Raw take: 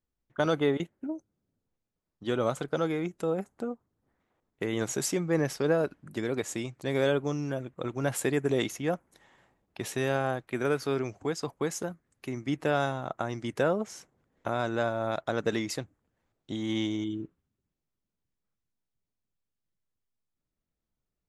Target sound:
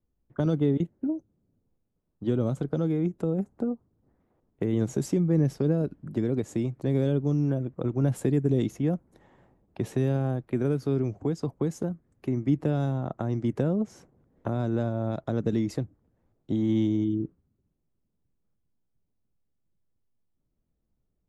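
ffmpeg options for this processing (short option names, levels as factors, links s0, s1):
-filter_complex "[0:a]tiltshelf=f=1100:g=10,acrossover=split=290|3000[s0][s1][s2];[s1]acompressor=threshold=0.0251:ratio=6[s3];[s0][s3][s2]amix=inputs=3:normalize=0"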